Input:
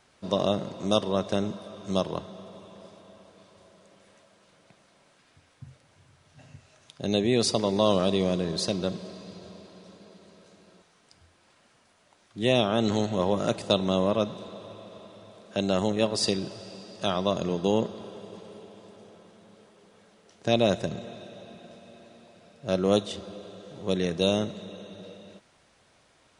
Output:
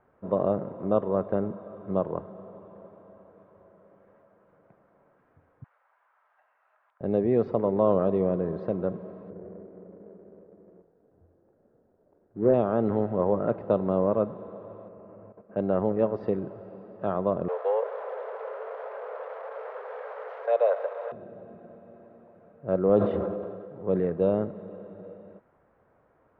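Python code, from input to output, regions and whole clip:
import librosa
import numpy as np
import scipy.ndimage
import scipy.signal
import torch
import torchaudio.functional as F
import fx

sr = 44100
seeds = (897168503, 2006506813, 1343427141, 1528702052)

y = fx.chain(x, sr, fx.highpass(hz=870.0, slope=24),
    fx.band_squash(depth_pct=100), at=(5.64, 7.01))
y = fx.chain(y, sr, fx.median_filter(points=41),
    fx.peak_eq(hz=410.0, db=6.0, octaves=1.3),
    fx.doubler(ms=44.0, db=-12.0), at=(9.3, 12.54))
y = fx.chain(y, sr, fx.low_shelf(hz=380.0, db=5.0),
    fx.level_steps(step_db=12),
    fx.brickwall_lowpass(high_hz=2900.0), at=(14.88, 15.57))
y = fx.chain(y, sr, fx.zero_step(step_db=-29.0),
    fx.steep_highpass(hz=460.0, slope=72),
    fx.high_shelf(hz=5300.0, db=11.0), at=(17.48, 21.12))
y = fx.chain(y, sr, fx.highpass(hz=57.0, slope=12),
    fx.sustainer(db_per_s=34.0), at=(22.89, 24.0))
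y = scipy.signal.sosfilt(scipy.signal.butter(4, 1500.0, 'lowpass', fs=sr, output='sos'), y)
y = fx.peak_eq(y, sr, hz=470.0, db=5.0, octaves=0.54)
y = y * 10.0 ** (-1.5 / 20.0)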